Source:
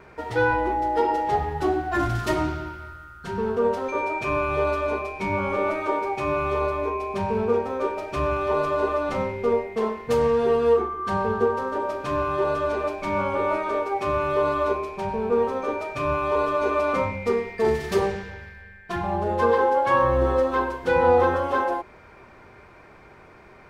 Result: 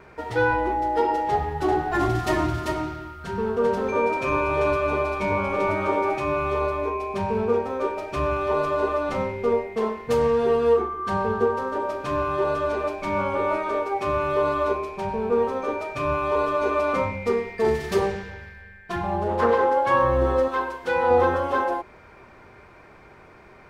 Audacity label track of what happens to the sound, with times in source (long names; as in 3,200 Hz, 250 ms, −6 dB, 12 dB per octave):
1.290000	6.180000	single-tap delay 392 ms −3.5 dB
19.270000	19.750000	highs frequency-modulated by the lows depth 0.22 ms
20.480000	21.110000	low-shelf EQ 360 Hz −10.5 dB